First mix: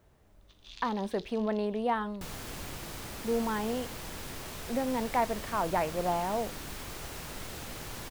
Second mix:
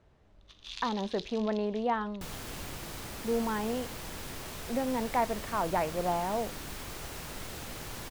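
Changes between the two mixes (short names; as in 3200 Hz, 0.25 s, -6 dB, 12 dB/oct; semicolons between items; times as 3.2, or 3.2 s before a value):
speech: add air absorption 90 m; first sound +7.0 dB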